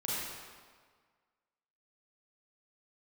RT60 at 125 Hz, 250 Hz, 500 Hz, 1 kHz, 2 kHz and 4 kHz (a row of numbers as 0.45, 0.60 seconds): 1.5, 1.6, 1.6, 1.7, 1.4, 1.3 seconds